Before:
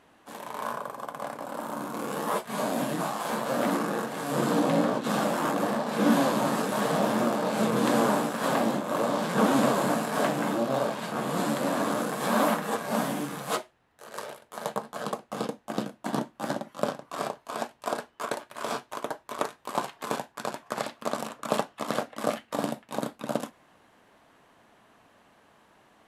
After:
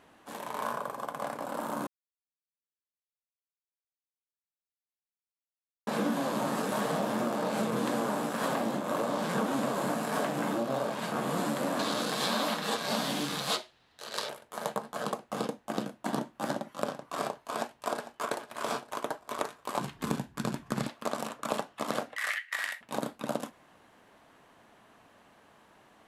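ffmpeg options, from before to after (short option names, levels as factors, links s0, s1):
-filter_complex "[0:a]asettb=1/sr,asplit=3[s0][s1][s2];[s0]atrim=end=11.794[s3];[s1]atrim=start=11.79:end=14.29,asetpts=PTS-STARTPTS,afade=t=in:d=0.004:c=qsin,afade=t=out:st=2.496:d=0.004:c=qsin,equalizer=f=4100:t=o:w=1.2:g=14.5[s4];[s2]atrim=start=14.286[s5];[s3][s4]acrossfade=d=0.004:c1=hsin:c2=qsin[s6];[s6][s5]acrossfade=d=0.004:c1=qsin:c2=hsin,asplit=2[s7][s8];[s8]afade=t=in:st=17.57:d=0.01,afade=t=out:st=18.28:d=0.01,aecho=0:1:450|900|1350|1800:0.16788|0.0755462|0.0339958|0.0152981[s9];[s7][s9]amix=inputs=2:normalize=0,asplit=3[s10][s11][s12];[s10]afade=t=out:st=19.79:d=0.02[s13];[s11]asubboost=boost=9.5:cutoff=200,afade=t=in:st=19.79:d=0.02,afade=t=out:st=20.87:d=0.02[s14];[s12]afade=t=in:st=20.87:d=0.02[s15];[s13][s14][s15]amix=inputs=3:normalize=0,asettb=1/sr,asplit=3[s16][s17][s18];[s16]atrim=end=22.164[s19];[s17]atrim=start=22.16:end=22.81,asetpts=PTS-STARTPTS,afade=t=in:d=0.004:c=qsin,afade=t=out:st=0.646:d=0.004:c=qsin,highpass=f=1900:t=q:w=10[s20];[s18]atrim=start=22.806[s21];[s19][s20]acrossfade=d=0.004:c1=hsin:c2=qsin[s22];[s22][s21]acrossfade=d=0.004:c1=qsin:c2=hsin,asplit=3[s23][s24][s25];[s23]atrim=end=1.87,asetpts=PTS-STARTPTS,afade=t=out:st=1.866:d=0.004:c=hsin[s26];[s24]atrim=start=1.87:end=5.87,asetpts=PTS-STARTPTS,volume=0[s27];[s25]atrim=start=5.87,asetpts=PTS-STARTPTS,afade=t=in:d=0.004:c=hsin[s28];[s26][s27][s28]concat=n=3:v=0:a=1,acompressor=threshold=0.0447:ratio=6"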